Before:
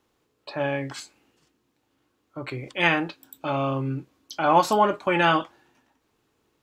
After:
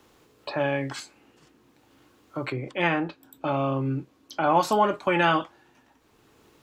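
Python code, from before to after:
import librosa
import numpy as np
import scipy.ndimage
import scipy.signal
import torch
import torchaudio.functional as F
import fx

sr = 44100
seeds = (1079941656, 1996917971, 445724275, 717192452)

y = fx.high_shelf(x, sr, hz=2100.0, db=-8.5, at=(2.52, 4.61))
y = fx.band_squash(y, sr, depth_pct=40)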